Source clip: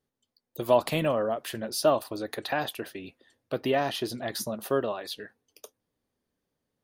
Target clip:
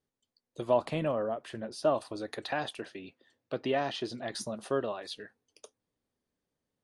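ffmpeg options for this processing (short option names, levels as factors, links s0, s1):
-filter_complex "[0:a]asplit=3[s0][s1][s2];[s0]afade=t=out:st=0.64:d=0.02[s3];[s1]highshelf=f=2800:g=-10,afade=t=in:st=0.64:d=0.02,afade=t=out:st=1.94:d=0.02[s4];[s2]afade=t=in:st=1.94:d=0.02[s5];[s3][s4][s5]amix=inputs=3:normalize=0,asettb=1/sr,asplit=3[s6][s7][s8];[s6]atrim=end=2.794[s9];[s7]atrim=start=2.79:end=4.35,asetpts=PTS-STARTPTS,afade=t=in:d=0.004:c=qsin,afade=t=out:st=1.556:d=0.004:c=qsin,highpass=100,lowpass=6600[s10];[s8]atrim=start=4.346[s11];[s9][s10]acrossfade=d=0.004:c1=hsin:c2=qsin[s12];[s12][s11]acrossfade=d=0.004:c1=qsin:c2=hsin,volume=0.631" -ar 22050 -c:a aac -b:a 96k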